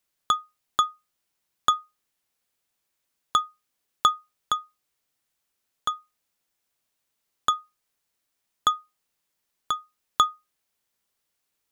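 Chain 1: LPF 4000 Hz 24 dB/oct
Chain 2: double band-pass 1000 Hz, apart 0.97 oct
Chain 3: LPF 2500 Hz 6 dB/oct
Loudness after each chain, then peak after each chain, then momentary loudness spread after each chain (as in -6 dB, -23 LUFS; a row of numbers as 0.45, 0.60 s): -28.0, -36.5, -29.0 LUFS; -6.5, -14.5, -8.0 dBFS; 8, 8, 8 LU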